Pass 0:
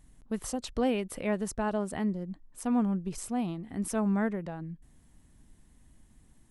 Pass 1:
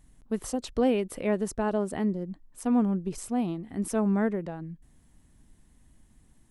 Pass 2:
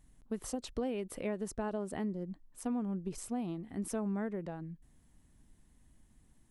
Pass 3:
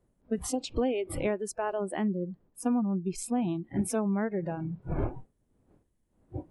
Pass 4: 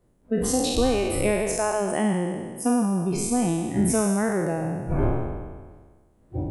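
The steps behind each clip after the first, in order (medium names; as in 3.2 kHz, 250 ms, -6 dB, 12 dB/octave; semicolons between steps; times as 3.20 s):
dynamic bell 370 Hz, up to +6 dB, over -42 dBFS, Q 1
compression 6:1, threshold -27 dBFS, peak gain reduction 8 dB; trim -5 dB
wind noise 310 Hz -47 dBFS; spectral noise reduction 22 dB; trim +8 dB
spectral sustain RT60 1.54 s; trim +4.5 dB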